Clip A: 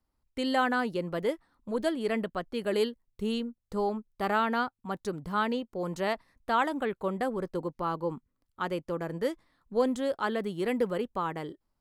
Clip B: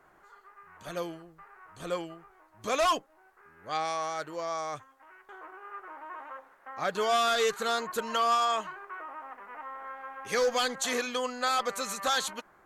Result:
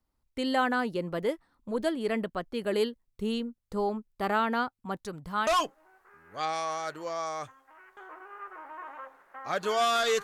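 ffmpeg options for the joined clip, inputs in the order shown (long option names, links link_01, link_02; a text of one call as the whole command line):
ffmpeg -i cue0.wav -i cue1.wav -filter_complex "[0:a]asettb=1/sr,asplit=3[link_01][link_02][link_03];[link_01]atrim=end=5.044[link_04];[link_02]atrim=start=5.04:end=5.47,asetpts=PTS-STARTPTS,afade=type=in:duration=0.004:curve=qsin,afade=type=out:start_time=0.426:duration=0.004:curve=qsin,equalizer=frequency=320:width_type=o:width=1.7:gain=-7[link_05];[link_03]atrim=start=5.466[link_06];[link_04][link_05]acrossfade=duration=0.004:curve1=hsin:curve2=qsin[link_07];[link_07][link_06]acrossfade=duration=0.004:curve1=qsin:curve2=hsin,apad=whole_dur=10.23,atrim=end=10.23,atrim=end=5.472[link_08];[1:a]atrim=start=2.788:end=7.55[link_09];[link_08][link_09]acrossfade=duration=0.004:curve1=hsin:curve2=hsin" out.wav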